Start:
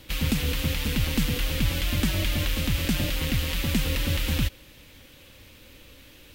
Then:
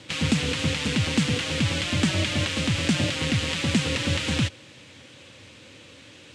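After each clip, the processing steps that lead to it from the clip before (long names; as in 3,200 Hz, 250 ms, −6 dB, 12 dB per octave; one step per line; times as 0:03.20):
elliptic band-pass filter 100–8,100 Hz, stop band 40 dB
level +4.5 dB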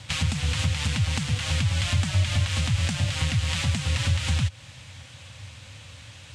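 low-shelf EQ 220 Hz +11 dB
downward compressor, threshold −21 dBFS, peak gain reduction 9.5 dB
drawn EQ curve 100 Hz 0 dB, 360 Hz −21 dB, 740 Hz −1 dB, 2,700 Hz −3 dB, 9,900 Hz +2 dB
level +3.5 dB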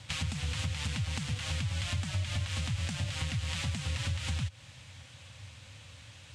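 downward compressor 2.5 to 1, threshold −24 dBFS, peak gain reduction 4.5 dB
level −6.5 dB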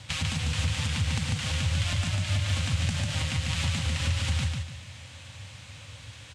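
repeating echo 146 ms, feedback 33%, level −3 dB
level +4 dB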